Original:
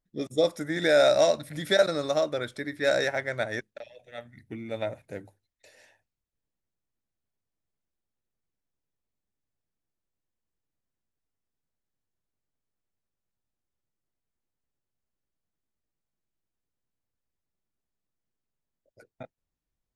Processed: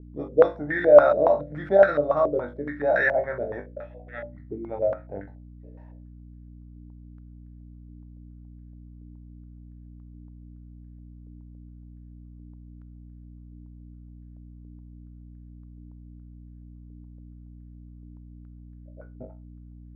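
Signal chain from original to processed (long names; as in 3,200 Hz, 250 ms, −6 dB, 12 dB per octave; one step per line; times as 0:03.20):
flutter between parallel walls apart 3.5 metres, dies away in 0.24 s
mains hum 60 Hz, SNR 12 dB
low-pass on a step sequencer 7.1 Hz 430–1,700 Hz
level −2.5 dB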